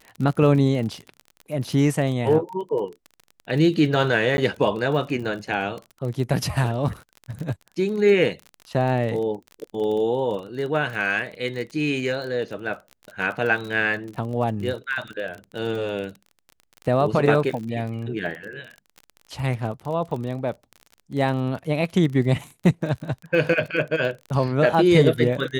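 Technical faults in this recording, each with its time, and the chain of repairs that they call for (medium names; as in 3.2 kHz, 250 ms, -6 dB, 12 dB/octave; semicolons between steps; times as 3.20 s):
crackle 31 per s -30 dBFS
4.37–4.38 s: dropout 11 ms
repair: de-click; interpolate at 4.37 s, 11 ms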